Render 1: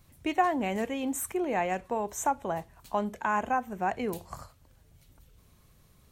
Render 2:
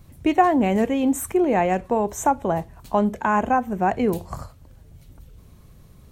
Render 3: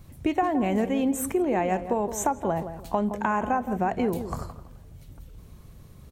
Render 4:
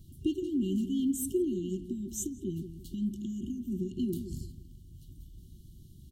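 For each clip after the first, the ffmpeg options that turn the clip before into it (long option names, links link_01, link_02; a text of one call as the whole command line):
ffmpeg -i in.wav -af "tiltshelf=frequency=700:gain=4.5,volume=8.5dB" out.wav
ffmpeg -i in.wav -filter_complex "[0:a]acompressor=threshold=-23dB:ratio=3,asplit=2[link_01][link_02];[link_02]adelay=168,lowpass=frequency=1100:poles=1,volume=-9.5dB,asplit=2[link_03][link_04];[link_04]adelay=168,lowpass=frequency=1100:poles=1,volume=0.33,asplit=2[link_05][link_06];[link_06]adelay=168,lowpass=frequency=1100:poles=1,volume=0.33,asplit=2[link_07][link_08];[link_08]adelay=168,lowpass=frequency=1100:poles=1,volume=0.33[link_09];[link_03][link_05][link_07][link_09]amix=inputs=4:normalize=0[link_10];[link_01][link_10]amix=inputs=2:normalize=0" out.wav
ffmpeg -i in.wav -af "afftfilt=real='re*(1-between(b*sr/4096,390,2800))':imag='im*(1-between(b*sr/4096,390,2800))':win_size=4096:overlap=0.75,volume=-4dB" out.wav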